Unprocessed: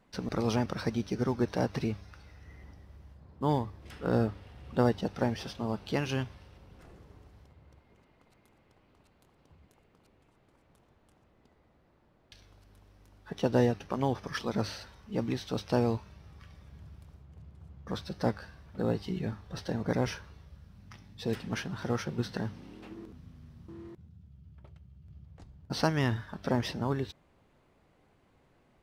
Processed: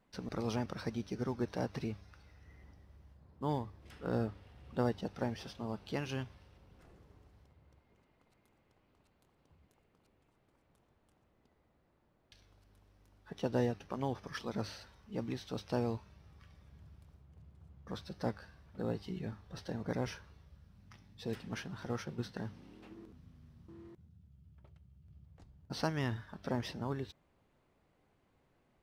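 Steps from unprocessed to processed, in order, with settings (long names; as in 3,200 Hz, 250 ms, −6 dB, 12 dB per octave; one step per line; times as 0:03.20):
0:21.85–0:22.49: downward expander −35 dBFS
level −7 dB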